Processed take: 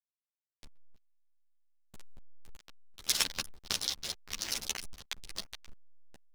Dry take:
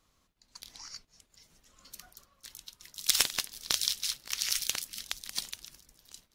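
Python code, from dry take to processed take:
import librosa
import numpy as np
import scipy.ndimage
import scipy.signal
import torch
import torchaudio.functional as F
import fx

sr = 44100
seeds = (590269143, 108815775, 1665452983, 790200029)

y = fx.notch(x, sr, hz=1300.0, q=25.0)
y = y + 10.0 ** (-23.0 / 20.0) * np.pad(y, (int(604 * sr / 1000.0), 0))[:len(y)]
y = fx.backlash(y, sr, play_db=-25.5)
y = fx.ensemble(y, sr)
y = y * librosa.db_to_amplitude(1.0)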